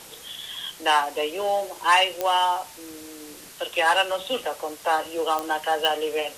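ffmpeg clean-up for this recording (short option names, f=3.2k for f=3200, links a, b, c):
-af "adeclick=t=4,afwtdn=0.0071"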